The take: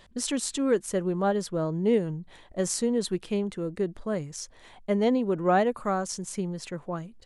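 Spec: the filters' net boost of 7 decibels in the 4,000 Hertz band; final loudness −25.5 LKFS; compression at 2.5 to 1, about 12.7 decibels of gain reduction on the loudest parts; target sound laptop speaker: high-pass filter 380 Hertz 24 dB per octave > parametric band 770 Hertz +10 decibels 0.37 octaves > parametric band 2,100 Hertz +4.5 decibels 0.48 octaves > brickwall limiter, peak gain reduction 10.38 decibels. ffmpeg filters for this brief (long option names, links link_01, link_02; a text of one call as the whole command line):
ffmpeg -i in.wav -af "equalizer=frequency=4000:width_type=o:gain=8.5,acompressor=threshold=-38dB:ratio=2.5,highpass=frequency=380:width=0.5412,highpass=frequency=380:width=1.3066,equalizer=frequency=770:width_type=o:width=0.37:gain=10,equalizer=frequency=2100:width_type=o:width=0.48:gain=4.5,volume=15dB,alimiter=limit=-14.5dB:level=0:latency=1" out.wav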